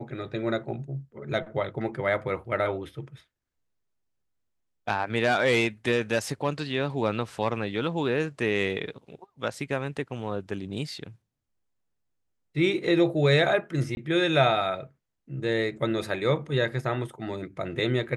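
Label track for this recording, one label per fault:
13.950000	13.970000	drop-out 21 ms

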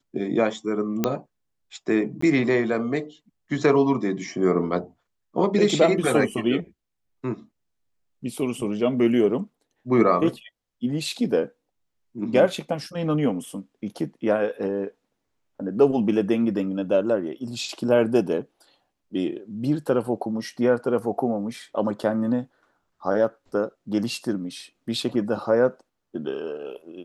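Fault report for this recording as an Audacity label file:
1.040000	1.040000	click −7 dBFS
2.210000	2.220000	drop-out 14 ms

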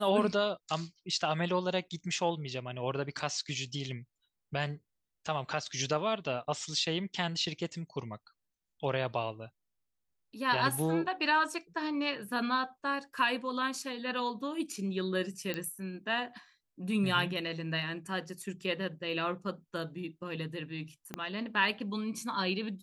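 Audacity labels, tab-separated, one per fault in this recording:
15.540000	15.540000	click −19 dBFS
21.140000	21.140000	click −21 dBFS

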